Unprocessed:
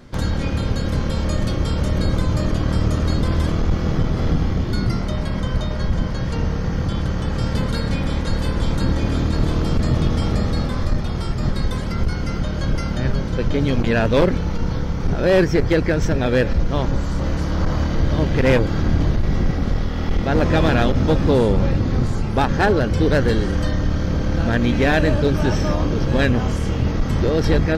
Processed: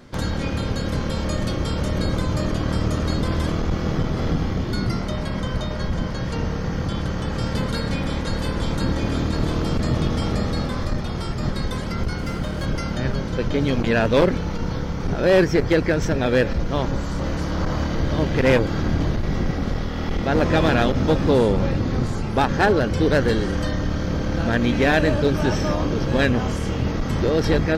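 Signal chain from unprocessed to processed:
low-shelf EQ 120 Hz −6.5 dB
0:12.18–0:12.66: windowed peak hold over 3 samples

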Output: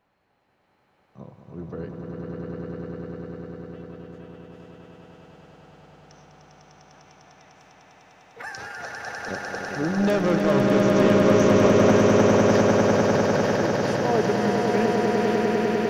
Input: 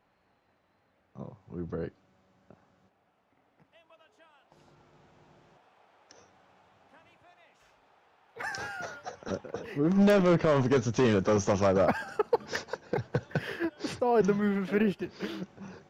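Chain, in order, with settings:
echo that builds up and dies away 100 ms, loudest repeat 8, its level −4 dB

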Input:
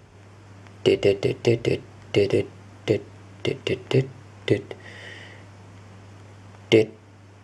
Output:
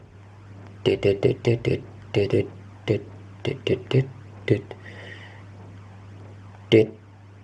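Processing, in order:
high-shelf EQ 4,100 Hz −9 dB
phase shifter 1.6 Hz, delay 1.3 ms, feedback 36%

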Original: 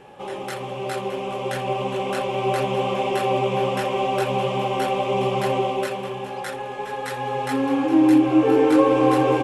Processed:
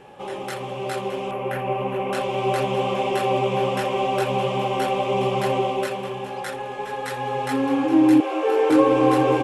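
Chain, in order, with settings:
0:01.31–0:02.13: flat-topped bell 5,600 Hz −14 dB
0:08.20–0:08.70: Butterworth high-pass 400 Hz 36 dB per octave

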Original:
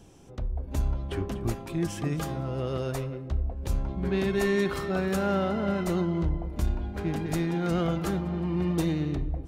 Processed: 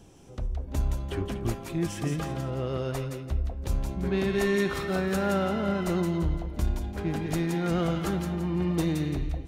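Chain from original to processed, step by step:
0:02.08–0:02.94: high-shelf EQ 5,400 Hz → 7,800 Hz −9 dB
delay with a high-pass on its return 170 ms, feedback 34%, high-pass 1,600 Hz, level −4 dB

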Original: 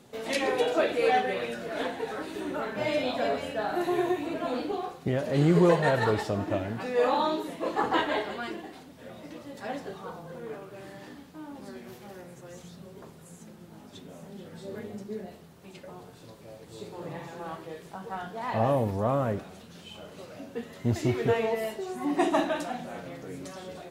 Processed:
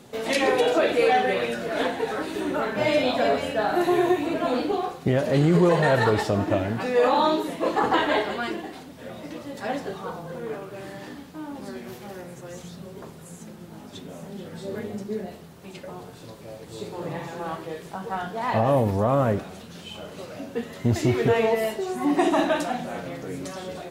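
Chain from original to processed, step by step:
brickwall limiter −17.5 dBFS, peak gain reduction 8 dB
level +6.5 dB

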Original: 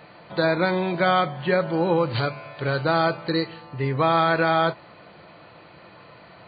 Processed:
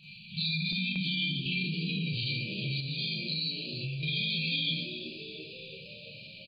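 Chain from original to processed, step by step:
pitch vibrato 3.4 Hz 12 cents
linear-phase brick-wall band-stop 210–2,300 Hz
four-comb reverb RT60 0.63 s, combs from 26 ms, DRR −8 dB
0:00.72–0:01.46: noise gate with hold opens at −17 dBFS
on a send: echo with shifted repeats 336 ms, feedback 64%, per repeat +76 Hz, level −17 dB
0:02.80–0:04.03: on the sum: downward compressor 6 to 1, threshold −28 dBFS, peak gain reduction 9 dB
brickwall limiter −21 dBFS, peak gain reduction 11 dB
parametric band 64 Hz −12 dB 2.4 octaves

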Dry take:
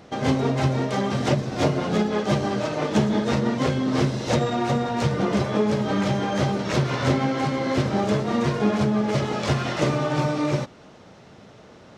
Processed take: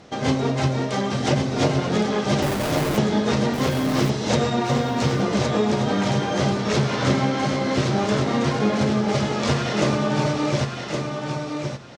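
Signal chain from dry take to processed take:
low-pass filter 7,600 Hz 12 dB per octave
high-shelf EQ 4,500 Hz +8 dB
0:02.42–0:02.98: comparator with hysteresis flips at −28.5 dBFS
repeating echo 1,116 ms, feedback 18%, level −5 dB

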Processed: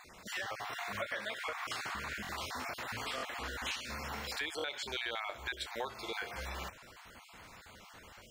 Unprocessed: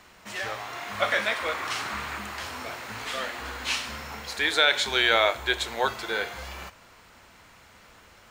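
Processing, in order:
time-frequency cells dropped at random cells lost 24%
downward compressor 5 to 1, threshold −37 dBFS, peak gain reduction 18.5 dB
buffer that repeats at 0:02.22/0:03.16/0:04.57, samples 1,024, times 2

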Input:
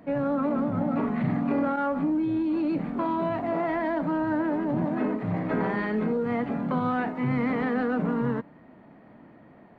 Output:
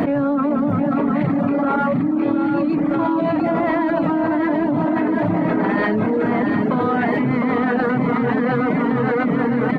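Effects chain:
parametric band 290 Hz +4 dB 0.31 octaves
bouncing-ball delay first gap 710 ms, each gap 0.8×, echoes 5
reverb reduction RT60 0.59 s
low-shelf EQ 88 Hz −5.5 dB
envelope flattener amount 100%

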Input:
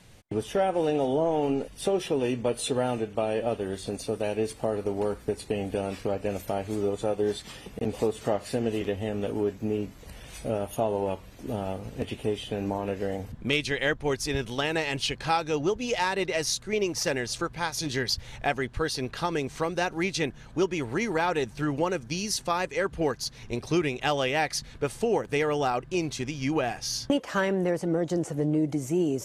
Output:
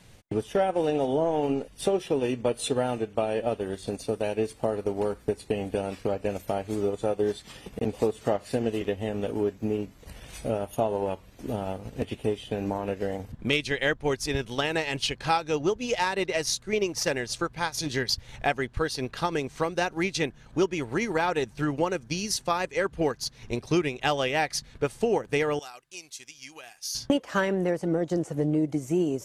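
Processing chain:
transient designer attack +2 dB, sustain −5 dB
0:25.59–0:26.95: first-order pre-emphasis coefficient 0.97

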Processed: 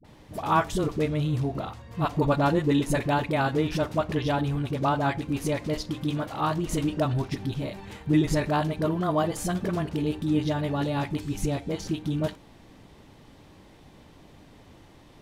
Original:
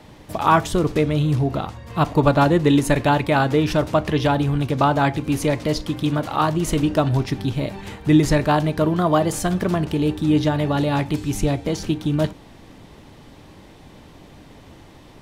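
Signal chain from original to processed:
all-pass dispersion highs, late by 46 ms, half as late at 480 Hz
level −7 dB

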